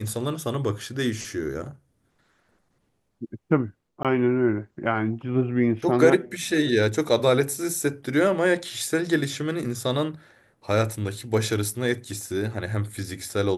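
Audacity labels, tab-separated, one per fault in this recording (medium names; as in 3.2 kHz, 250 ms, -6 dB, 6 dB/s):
4.030000	4.050000	dropout 17 ms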